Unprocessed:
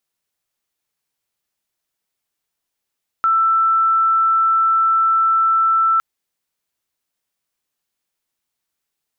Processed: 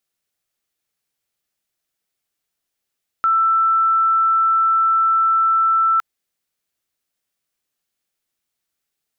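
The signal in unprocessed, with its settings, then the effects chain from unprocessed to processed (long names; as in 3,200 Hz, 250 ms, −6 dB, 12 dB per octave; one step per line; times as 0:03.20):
tone sine 1,330 Hz −12 dBFS 2.76 s
parametric band 960 Hz −5 dB 0.36 octaves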